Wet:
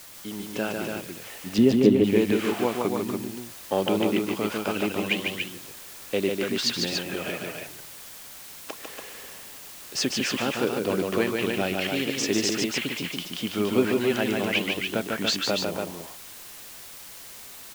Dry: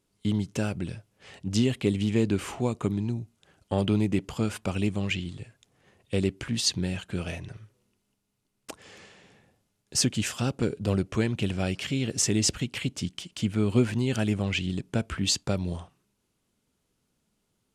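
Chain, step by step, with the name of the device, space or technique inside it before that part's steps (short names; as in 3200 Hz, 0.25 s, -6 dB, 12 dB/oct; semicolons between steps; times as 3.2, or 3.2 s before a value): dictaphone (BPF 330–3900 Hz; AGC gain up to 8.5 dB; wow and flutter; white noise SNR 15 dB); 1.58–2.04 tilt shelf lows +9.5 dB, about 790 Hz; loudspeakers at several distances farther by 51 m -4 dB, 98 m -5 dB; gain -3.5 dB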